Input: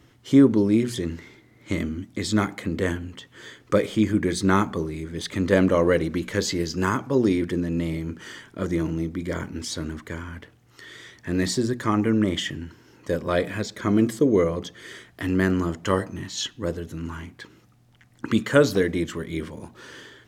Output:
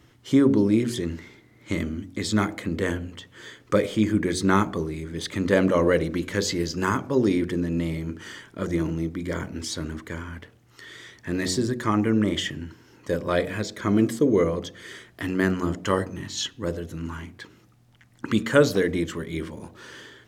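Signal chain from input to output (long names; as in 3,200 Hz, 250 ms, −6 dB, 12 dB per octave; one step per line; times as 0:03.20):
hum removal 45.94 Hz, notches 16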